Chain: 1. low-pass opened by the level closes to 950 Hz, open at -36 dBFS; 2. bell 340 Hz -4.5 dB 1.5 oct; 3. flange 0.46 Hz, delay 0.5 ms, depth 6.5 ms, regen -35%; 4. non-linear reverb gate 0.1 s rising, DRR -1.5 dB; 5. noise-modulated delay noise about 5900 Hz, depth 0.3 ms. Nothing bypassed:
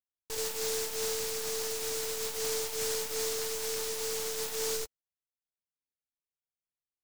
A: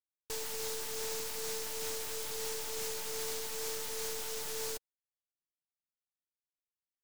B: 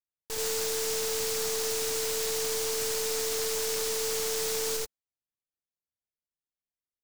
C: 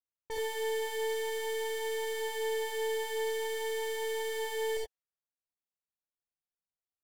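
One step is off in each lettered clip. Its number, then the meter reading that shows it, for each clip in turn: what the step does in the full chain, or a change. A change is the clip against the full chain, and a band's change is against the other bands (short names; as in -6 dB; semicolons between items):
4, 500 Hz band -2.5 dB; 3, crest factor change -1.5 dB; 5, 8 kHz band -15.0 dB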